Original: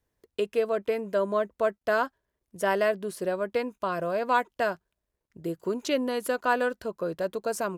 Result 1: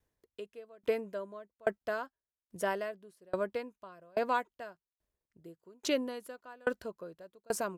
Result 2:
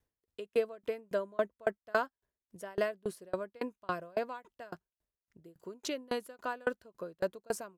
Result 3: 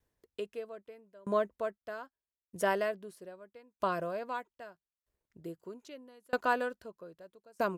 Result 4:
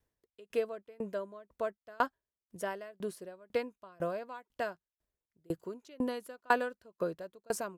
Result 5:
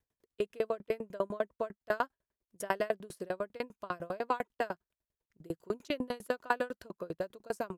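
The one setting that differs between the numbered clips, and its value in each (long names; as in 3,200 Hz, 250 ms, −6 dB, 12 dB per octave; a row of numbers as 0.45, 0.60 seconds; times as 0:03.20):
tremolo with a ramp in dB, speed: 1.2, 3.6, 0.79, 2, 10 Hertz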